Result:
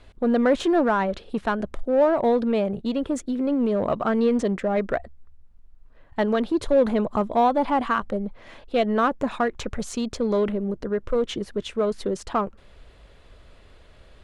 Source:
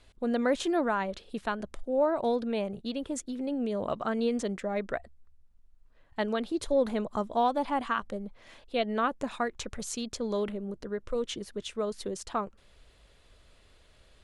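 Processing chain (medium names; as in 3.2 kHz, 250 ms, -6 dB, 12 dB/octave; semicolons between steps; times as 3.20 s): in parallel at -3.5 dB: hard clipper -31 dBFS, distortion -6 dB; on the sum: treble shelf 3.5 kHz -12 dB; trim +5.5 dB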